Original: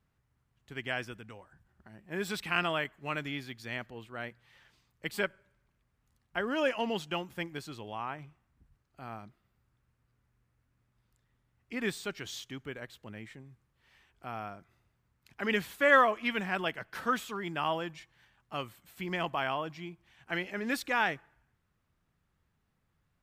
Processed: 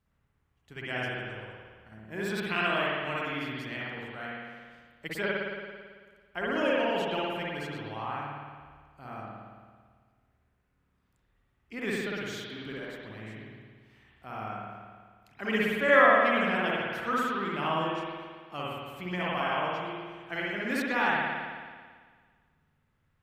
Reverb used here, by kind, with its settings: spring tank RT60 1.7 s, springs 55 ms, chirp 75 ms, DRR -5.5 dB; gain -3 dB

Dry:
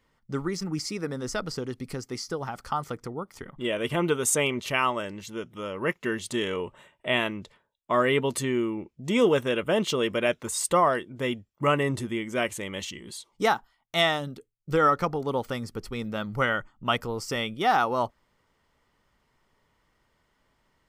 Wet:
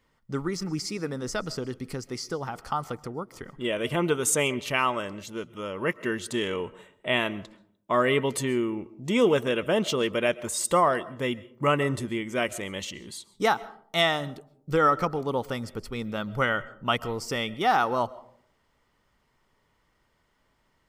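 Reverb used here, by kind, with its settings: digital reverb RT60 0.61 s, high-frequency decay 0.35×, pre-delay 90 ms, DRR 19.5 dB

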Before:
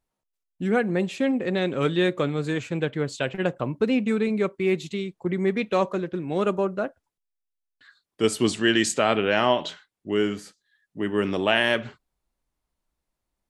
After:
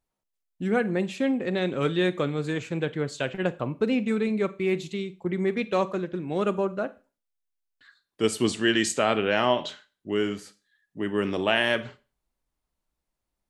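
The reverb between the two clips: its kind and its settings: Schroeder reverb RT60 0.34 s, combs from 33 ms, DRR 16 dB; gain -2 dB

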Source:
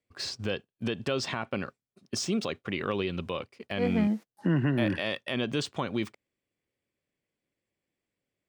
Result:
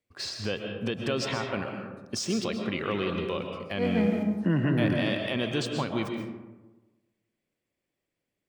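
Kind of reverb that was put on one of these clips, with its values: digital reverb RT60 1.2 s, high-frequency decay 0.4×, pre-delay 90 ms, DRR 3 dB

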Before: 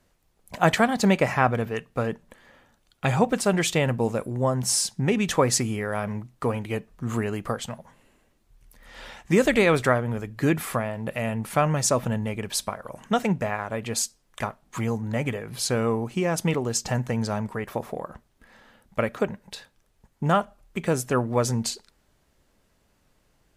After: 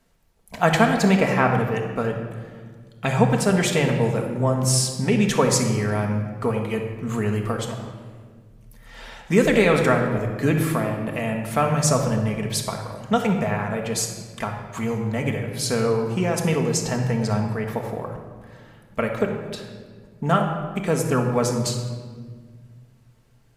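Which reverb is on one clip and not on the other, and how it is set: shoebox room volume 2100 m³, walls mixed, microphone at 1.6 m

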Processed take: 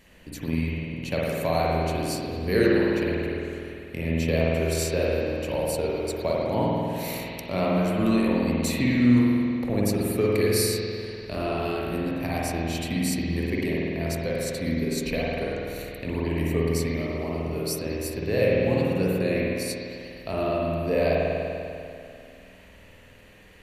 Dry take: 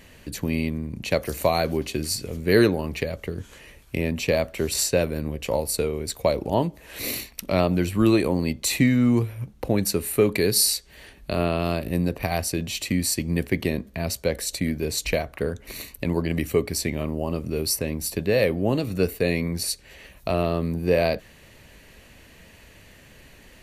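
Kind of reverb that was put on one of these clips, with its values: spring tank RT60 2.6 s, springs 49 ms, chirp 70 ms, DRR -5.5 dB; gain -7.5 dB

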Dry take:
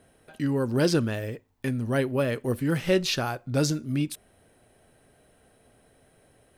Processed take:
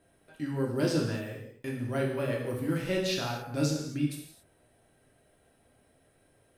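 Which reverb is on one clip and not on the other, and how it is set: non-linear reverb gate 0.3 s falling, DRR -2 dB; gain -9 dB

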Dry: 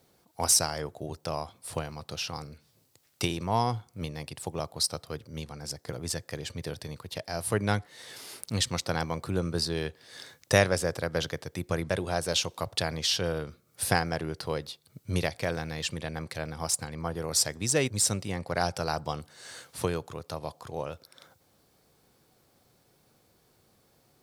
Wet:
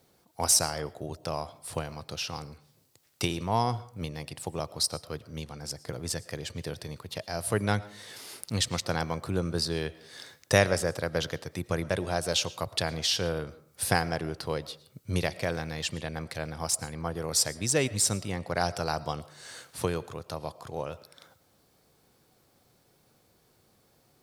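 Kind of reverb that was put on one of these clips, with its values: digital reverb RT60 0.54 s, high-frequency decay 0.5×, pre-delay 70 ms, DRR 18.5 dB

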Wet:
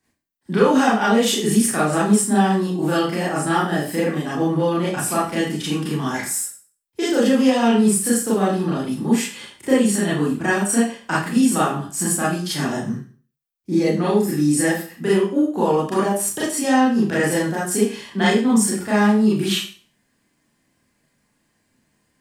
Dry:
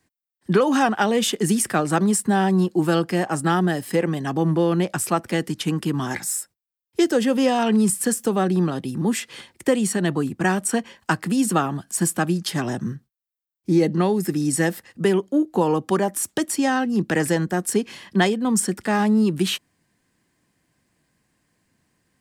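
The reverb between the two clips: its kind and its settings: Schroeder reverb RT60 0.4 s, combs from 27 ms, DRR -8.5 dB; gain -6.5 dB

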